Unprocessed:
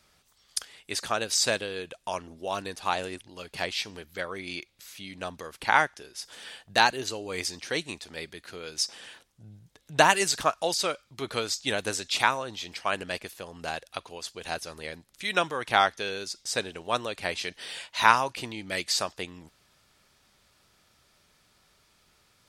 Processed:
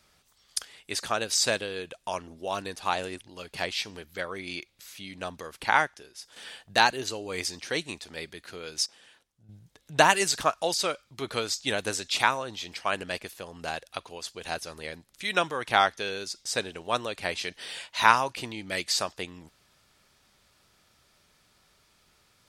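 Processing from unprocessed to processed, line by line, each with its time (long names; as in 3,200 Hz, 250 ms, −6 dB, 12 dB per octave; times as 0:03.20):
0:05.63–0:06.36: fade out, to −7.5 dB
0:08.86–0:09.49: clip gain −10 dB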